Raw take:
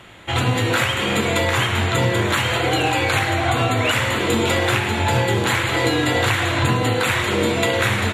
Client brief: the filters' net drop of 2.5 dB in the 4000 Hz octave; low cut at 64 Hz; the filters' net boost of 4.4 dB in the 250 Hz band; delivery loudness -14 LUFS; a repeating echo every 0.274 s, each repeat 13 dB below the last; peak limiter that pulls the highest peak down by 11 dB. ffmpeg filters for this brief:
-af "highpass=64,equalizer=f=250:t=o:g=6,equalizer=f=4k:t=o:g=-3.5,alimiter=limit=-15.5dB:level=0:latency=1,aecho=1:1:274|548|822:0.224|0.0493|0.0108,volume=9.5dB"

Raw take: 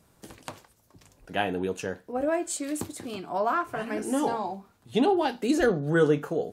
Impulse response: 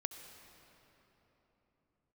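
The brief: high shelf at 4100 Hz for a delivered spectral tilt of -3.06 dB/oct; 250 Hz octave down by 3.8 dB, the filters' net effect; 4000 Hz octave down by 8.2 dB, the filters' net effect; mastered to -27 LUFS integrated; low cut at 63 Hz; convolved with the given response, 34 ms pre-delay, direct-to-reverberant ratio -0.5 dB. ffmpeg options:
-filter_complex "[0:a]highpass=63,equalizer=f=250:t=o:g=-5,equalizer=f=4k:t=o:g=-7.5,highshelf=f=4.1k:g=-7,asplit=2[a][b];[1:a]atrim=start_sample=2205,adelay=34[c];[b][c]afir=irnorm=-1:irlink=0,volume=1.5dB[d];[a][d]amix=inputs=2:normalize=0,volume=-0.5dB"

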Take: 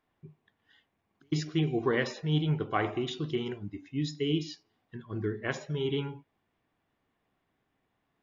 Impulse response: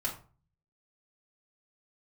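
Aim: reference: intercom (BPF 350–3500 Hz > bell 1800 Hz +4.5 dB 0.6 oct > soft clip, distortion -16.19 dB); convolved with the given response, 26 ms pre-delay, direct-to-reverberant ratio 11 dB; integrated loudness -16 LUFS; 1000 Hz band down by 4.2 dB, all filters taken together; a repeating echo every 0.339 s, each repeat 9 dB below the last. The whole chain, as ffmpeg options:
-filter_complex "[0:a]equalizer=f=1k:t=o:g=-6.5,aecho=1:1:339|678|1017|1356:0.355|0.124|0.0435|0.0152,asplit=2[a][b];[1:a]atrim=start_sample=2205,adelay=26[c];[b][c]afir=irnorm=-1:irlink=0,volume=-15dB[d];[a][d]amix=inputs=2:normalize=0,highpass=350,lowpass=3.5k,equalizer=f=1.8k:t=o:w=0.6:g=4.5,asoftclip=threshold=-24dB,volume=21dB"

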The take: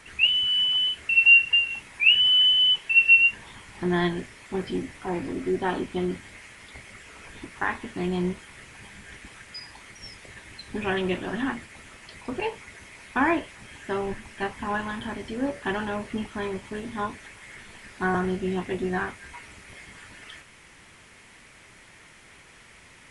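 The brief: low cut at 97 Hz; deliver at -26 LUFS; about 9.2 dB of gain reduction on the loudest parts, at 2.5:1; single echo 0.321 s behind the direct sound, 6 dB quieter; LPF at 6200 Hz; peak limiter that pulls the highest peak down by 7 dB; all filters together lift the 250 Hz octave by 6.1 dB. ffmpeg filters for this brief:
-af "highpass=97,lowpass=6.2k,equalizer=f=250:t=o:g=9,acompressor=threshold=-26dB:ratio=2.5,alimiter=limit=-21.5dB:level=0:latency=1,aecho=1:1:321:0.501,volume=2.5dB"

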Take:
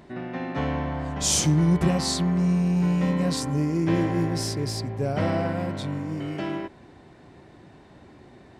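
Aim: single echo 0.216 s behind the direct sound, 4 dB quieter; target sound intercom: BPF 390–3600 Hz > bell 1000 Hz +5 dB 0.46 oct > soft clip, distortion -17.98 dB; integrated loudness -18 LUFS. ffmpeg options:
-af "highpass=390,lowpass=3.6k,equalizer=f=1k:t=o:w=0.46:g=5,aecho=1:1:216:0.631,asoftclip=threshold=-21.5dB,volume=13.5dB"

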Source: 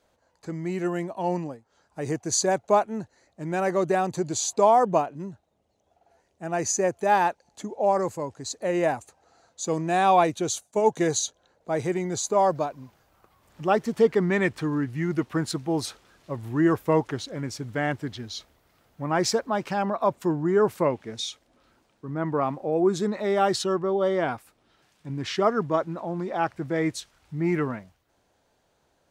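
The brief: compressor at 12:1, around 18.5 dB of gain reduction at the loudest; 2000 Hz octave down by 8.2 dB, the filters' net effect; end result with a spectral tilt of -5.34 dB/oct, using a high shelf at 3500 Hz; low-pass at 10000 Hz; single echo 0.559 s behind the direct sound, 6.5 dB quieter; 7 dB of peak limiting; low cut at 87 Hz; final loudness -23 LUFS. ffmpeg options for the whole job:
-af "highpass=87,lowpass=10k,equalizer=f=2k:t=o:g=-8.5,highshelf=f=3.5k:g=-8.5,acompressor=threshold=-34dB:ratio=12,alimiter=level_in=6.5dB:limit=-24dB:level=0:latency=1,volume=-6.5dB,aecho=1:1:559:0.473,volume=17.5dB"

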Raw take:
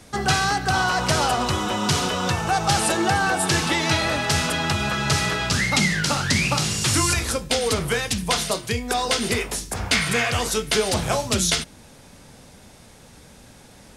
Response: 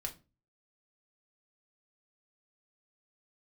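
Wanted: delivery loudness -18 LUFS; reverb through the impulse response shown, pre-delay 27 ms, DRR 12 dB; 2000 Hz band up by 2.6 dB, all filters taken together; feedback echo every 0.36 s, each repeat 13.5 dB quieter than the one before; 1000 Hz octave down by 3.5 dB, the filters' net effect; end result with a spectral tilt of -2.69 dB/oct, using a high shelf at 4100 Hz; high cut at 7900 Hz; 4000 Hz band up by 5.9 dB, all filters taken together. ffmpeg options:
-filter_complex "[0:a]lowpass=7.9k,equalizer=f=1k:t=o:g=-6,equalizer=f=2k:t=o:g=3.5,equalizer=f=4k:t=o:g=9,highshelf=f=4.1k:g=-3.5,aecho=1:1:360|720:0.211|0.0444,asplit=2[a][b];[1:a]atrim=start_sample=2205,adelay=27[c];[b][c]afir=irnorm=-1:irlink=0,volume=-11.5dB[d];[a][d]amix=inputs=2:normalize=0,volume=0.5dB"

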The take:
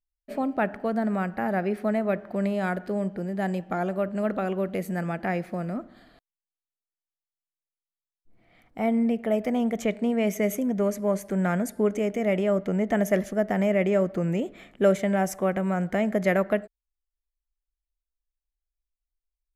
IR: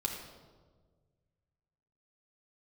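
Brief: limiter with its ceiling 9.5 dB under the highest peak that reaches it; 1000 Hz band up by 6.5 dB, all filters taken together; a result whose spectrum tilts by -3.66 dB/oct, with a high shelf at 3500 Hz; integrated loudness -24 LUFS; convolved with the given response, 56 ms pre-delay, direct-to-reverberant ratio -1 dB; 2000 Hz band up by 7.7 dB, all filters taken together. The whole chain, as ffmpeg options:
-filter_complex "[0:a]equalizer=f=1k:t=o:g=8.5,equalizer=f=2k:t=o:g=7.5,highshelf=f=3.5k:g=-4,alimiter=limit=-16.5dB:level=0:latency=1,asplit=2[a][b];[1:a]atrim=start_sample=2205,adelay=56[c];[b][c]afir=irnorm=-1:irlink=0,volume=-2dB[d];[a][d]amix=inputs=2:normalize=0,volume=-1dB"

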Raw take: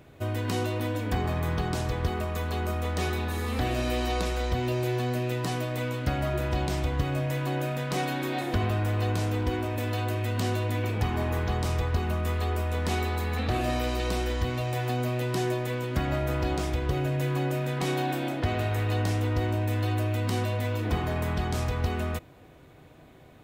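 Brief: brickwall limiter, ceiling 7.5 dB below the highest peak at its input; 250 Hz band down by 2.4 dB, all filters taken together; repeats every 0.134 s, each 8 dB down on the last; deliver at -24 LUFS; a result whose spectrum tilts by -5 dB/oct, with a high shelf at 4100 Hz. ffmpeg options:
-af "equalizer=f=250:t=o:g=-3.5,highshelf=f=4.1k:g=8.5,alimiter=limit=-20.5dB:level=0:latency=1,aecho=1:1:134|268|402|536|670:0.398|0.159|0.0637|0.0255|0.0102,volume=5dB"

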